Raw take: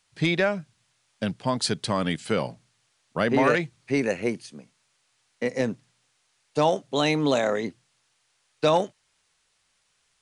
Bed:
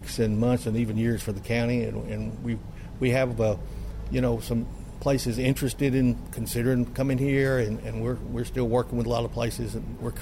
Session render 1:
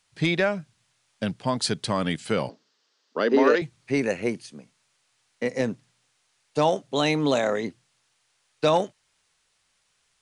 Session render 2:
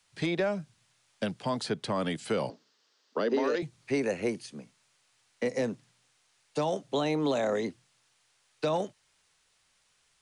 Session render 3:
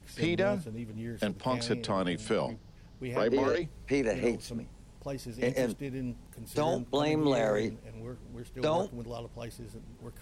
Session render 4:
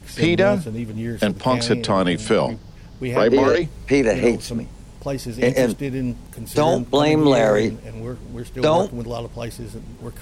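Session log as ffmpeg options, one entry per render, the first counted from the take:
ffmpeg -i in.wav -filter_complex "[0:a]asettb=1/sr,asplit=3[link_01][link_02][link_03];[link_01]atrim=end=2.494[link_04];[link_02]atrim=start=2.49:end=3.62,asetpts=PTS-STARTPTS,afade=type=in:duration=0.004:curve=qsin,afade=type=out:start_time=1.126:duration=0.004:curve=qsin,highpass=frequency=250:width=0.5412,highpass=frequency=250:width=1.3066,equalizer=frequency=260:width_type=q:width=4:gain=4,equalizer=frequency=430:width_type=q:width=4:gain=7,equalizer=frequency=730:width_type=q:width=4:gain=-5,equalizer=frequency=2300:width_type=q:width=4:gain=-7,equalizer=frequency=4900:width_type=q:width=4:gain=5,lowpass=frequency=6100:width=0.5412,lowpass=frequency=6100:width=1.3066[link_05];[link_03]atrim=start=3.616[link_06];[link_04][link_05]acrossfade=duration=0.004:curve1=hsin:curve2=qsin[link_07];[link_07][link_06]acrossfade=duration=0.004:curve1=qsin:curve2=hsin" out.wav
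ffmpeg -i in.wav -filter_complex "[0:a]acrossover=split=110|340|1100|3300[link_01][link_02][link_03][link_04][link_05];[link_01]acompressor=threshold=-54dB:ratio=4[link_06];[link_02]acompressor=threshold=-35dB:ratio=4[link_07];[link_03]acompressor=threshold=-26dB:ratio=4[link_08];[link_04]acompressor=threshold=-41dB:ratio=4[link_09];[link_05]acompressor=threshold=-43dB:ratio=4[link_10];[link_06][link_07][link_08][link_09][link_10]amix=inputs=5:normalize=0,acrossover=split=250[link_11][link_12];[link_12]alimiter=limit=-21dB:level=0:latency=1:release=34[link_13];[link_11][link_13]amix=inputs=2:normalize=0" out.wav
ffmpeg -i in.wav -i bed.wav -filter_complex "[1:a]volume=-14dB[link_01];[0:a][link_01]amix=inputs=2:normalize=0" out.wav
ffmpeg -i in.wav -af "volume=12dB" out.wav

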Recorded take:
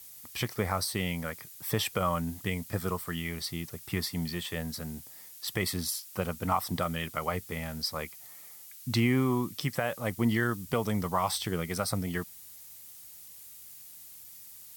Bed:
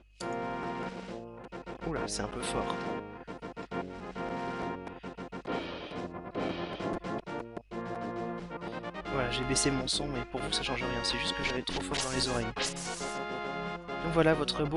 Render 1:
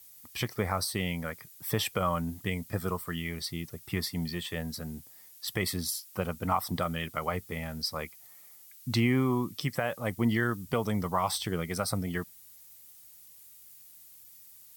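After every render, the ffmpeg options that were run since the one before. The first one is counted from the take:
ffmpeg -i in.wav -af "afftdn=noise_reduction=6:noise_floor=-49" out.wav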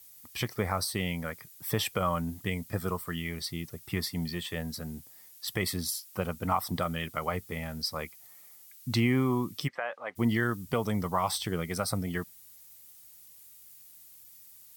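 ffmpeg -i in.wav -filter_complex "[0:a]asplit=3[link_01][link_02][link_03];[link_01]afade=type=out:start_time=9.67:duration=0.02[link_04];[link_02]highpass=670,lowpass=2300,afade=type=in:start_time=9.67:duration=0.02,afade=type=out:start_time=10.15:duration=0.02[link_05];[link_03]afade=type=in:start_time=10.15:duration=0.02[link_06];[link_04][link_05][link_06]amix=inputs=3:normalize=0" out.wav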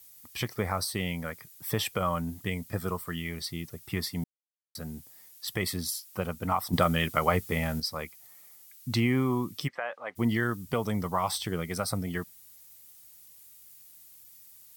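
ffmpeg -i in.wav -filter_complex "[0:a]asplit=5[link_01][link_02][link_03][link_04][link_05];[link_01]atrim=end=4.24,asetpts=PTS-STARTPTS,afade=type=out:start_time=4.236:duration=0.004:curve=hsin[link_06];[link_02]atrim=start=4.24:end=4.75,asetpts=PTS-STARTPTS,volume=0[link_07];[link_03]atrim=start=4.75:end=6.732,asetpts=PTS-STARTPTS,afade=type=in:duration=0.004:curve=hsin[link_08];[link_04]atrim=start=6.728:end=7.802,asetpts=PTS-STARTPTS,volume=7dB[link_09];[link_05]atrim=start=7.798[link_10];[link_06][link_07][link_08]concat=n=3:v=0:a=1[link_11];[link_11][link_09]acrossfade=duration=0.004:curve1=hsin:curve2=hsin[link_12];[link_12][link_10]acrossfade=duration=0.004:curve1=hsin:curve2=hsin" out.wav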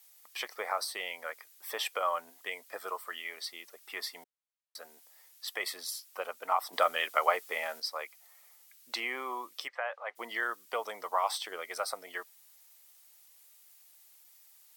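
ffmpeg -i in.wav -af "highpass=frequency=540:width=0.5412,highpass=frequency=540:width=1.3066,highshelf=frequency=5700:gain=-7.5" out.wav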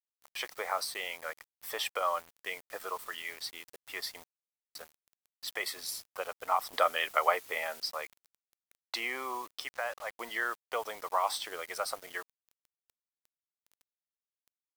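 ffmpeg -i in.wav -af "acrusher=bits=7:mix=0:aa=0.000001" out.wav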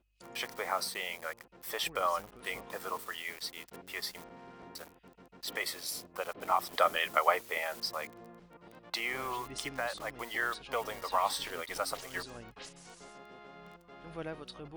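ffmpeg -i in.wav -i bed.wav -filter_complex "[1:a]volume=-15.5dB[link_01];[0:a][link_01]amix=inputs=2:normalize=0" out.wav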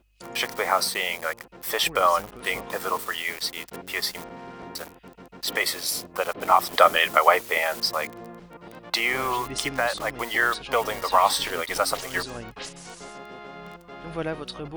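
ffmpeg -i in.wav -af "volume=11dB,alimiter=limit=-2dB:level=0:latency=1" out.wav

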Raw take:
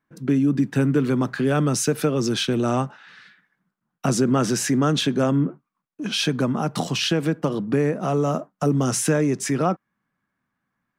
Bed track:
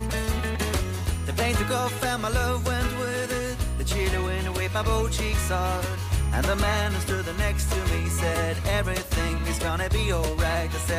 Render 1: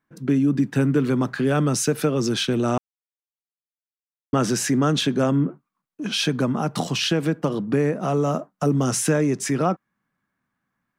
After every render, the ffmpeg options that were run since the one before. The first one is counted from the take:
ffmpeg -i in.wav -filter_complex "[0:a]asplit=3[link_01][link_02][link_03];[link_01]atrim=end=2.78,asetpts=PTS-STARTPTS,afade=type=out:start_time=2.776:duration=0.004:curve=hsin[link_04];[link_02]atrim=start=2.78:end=4.33,asetpts=PTS-STARTPTS,volume=0[link_05];[link_03]atrim=start=4.33,asetpts=PTS-STARTPTS,afade=type=in:duration=0.004:curve=hsin[link_06];[link_04][link_05][link_06]concat=n=3:v=0:a=1" out.wav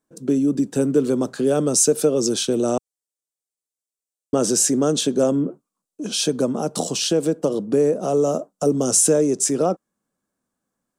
ffmpeg -i in.wav -af "equalizer=frequency=125:width_type=o:width=1:gain=-8,equalizer=frequency=500:width_type=o:width=1:gain=8,equalizer=frequency=1000:width_type=o:width=1:gain=-4,equalizer=frequency=2000:width_type=o:width=1:gain=-12,equalizer=frequency=8000:width_type=o:width=1:gain=12" out.wav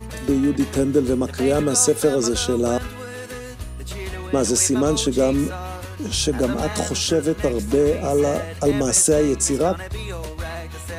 ffmpeg -i in.wav -i bed.wav -filter_complex "[1:a]volume=-5.5dB[link_01];[0:a][link_01]amix=inputs=2:normalize=0" out.wav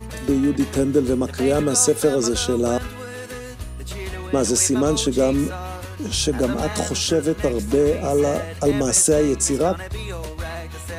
ffmpeg -i in.wav -af anull out.wav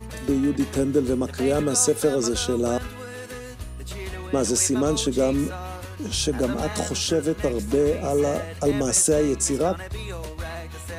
ffmpeg -i in.wav -af "volume=-3dB" out.wav

